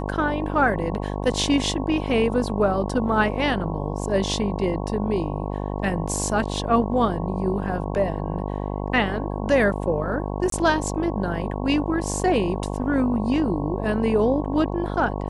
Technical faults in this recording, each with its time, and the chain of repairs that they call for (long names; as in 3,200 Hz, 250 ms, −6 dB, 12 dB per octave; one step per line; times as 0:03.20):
mains buzz 50 Hz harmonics 22 −28 dBFS
0:10.50–0:10.52: drop-out 23 ms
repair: hum removal 50 Hz, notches 22
repair the gap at 0:10.50, 23 ms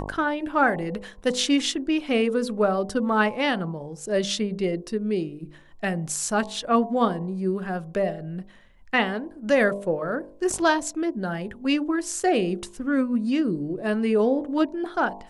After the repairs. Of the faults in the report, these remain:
none of them is left